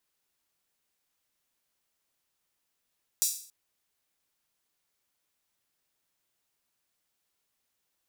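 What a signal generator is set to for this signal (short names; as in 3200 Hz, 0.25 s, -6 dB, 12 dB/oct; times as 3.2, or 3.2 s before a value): open hi-hat length 0.28 s, high-pass 6000 Hz, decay 0.49 s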